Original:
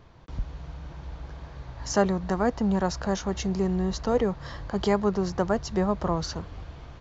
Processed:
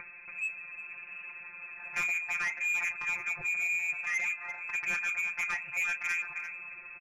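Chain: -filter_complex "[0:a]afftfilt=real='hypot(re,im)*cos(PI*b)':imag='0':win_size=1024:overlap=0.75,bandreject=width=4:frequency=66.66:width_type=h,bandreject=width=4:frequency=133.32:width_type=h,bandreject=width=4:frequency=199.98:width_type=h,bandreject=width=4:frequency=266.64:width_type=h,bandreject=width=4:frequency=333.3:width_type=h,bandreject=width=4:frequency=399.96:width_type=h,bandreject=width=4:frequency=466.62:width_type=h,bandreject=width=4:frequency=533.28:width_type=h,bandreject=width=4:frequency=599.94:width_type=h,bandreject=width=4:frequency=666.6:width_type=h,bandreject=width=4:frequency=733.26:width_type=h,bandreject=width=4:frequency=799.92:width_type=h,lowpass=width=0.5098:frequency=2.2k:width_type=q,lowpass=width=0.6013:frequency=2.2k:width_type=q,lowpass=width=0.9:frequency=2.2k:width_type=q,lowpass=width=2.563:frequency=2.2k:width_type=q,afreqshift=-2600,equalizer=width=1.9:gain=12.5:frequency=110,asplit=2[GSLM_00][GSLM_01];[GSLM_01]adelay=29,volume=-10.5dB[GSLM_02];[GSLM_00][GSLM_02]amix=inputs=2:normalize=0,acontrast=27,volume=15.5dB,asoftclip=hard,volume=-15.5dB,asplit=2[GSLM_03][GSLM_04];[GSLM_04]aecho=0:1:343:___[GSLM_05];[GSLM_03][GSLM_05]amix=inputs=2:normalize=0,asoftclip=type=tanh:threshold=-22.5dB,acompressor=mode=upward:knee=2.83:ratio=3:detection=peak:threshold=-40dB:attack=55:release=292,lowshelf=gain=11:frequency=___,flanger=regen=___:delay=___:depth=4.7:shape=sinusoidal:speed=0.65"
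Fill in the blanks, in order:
0.237, 250, -81, 2.1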